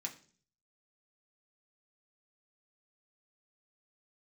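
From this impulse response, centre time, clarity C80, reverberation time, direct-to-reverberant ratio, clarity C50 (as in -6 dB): 11 ms, 17.5 dB, 0.45 s, 0.0 dB, 13.5 dB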